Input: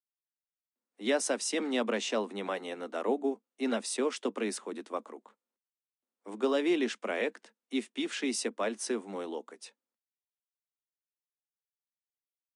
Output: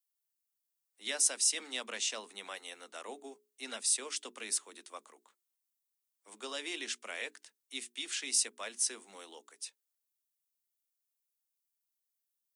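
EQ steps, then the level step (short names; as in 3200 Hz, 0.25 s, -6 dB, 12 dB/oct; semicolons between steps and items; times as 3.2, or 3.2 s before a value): pre-emphasis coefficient 0.97; notches 60/120/180/240/300/360/420 Hz; +7.0 dB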